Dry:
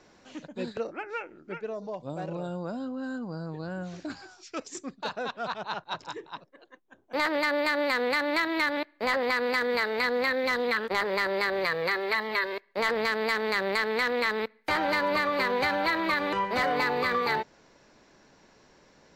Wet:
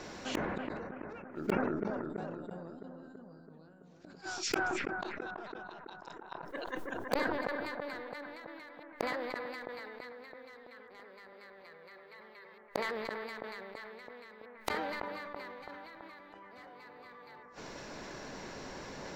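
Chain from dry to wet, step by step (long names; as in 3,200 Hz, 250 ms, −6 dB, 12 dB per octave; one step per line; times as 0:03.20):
gate with flip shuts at −32 dBFS, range −40 dB
in parallel at −9.5 dB: bit reduction 6 bits
on the sum: gain into a clipping stage and back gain 31 dB
on a send: bucket-brigade delay 331 ms, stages 4,096, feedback 63%, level −5 dB
on the sum: level that may fall only so fast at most 22 dB per second
level +12 dB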